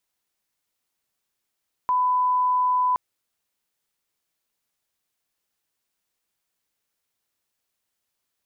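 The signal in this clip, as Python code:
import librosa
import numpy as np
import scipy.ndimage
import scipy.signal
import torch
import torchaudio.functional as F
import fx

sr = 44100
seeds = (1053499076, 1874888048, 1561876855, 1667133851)

y = fx.lineup_tone(sr, length_s=1.07, level_db=-18.0)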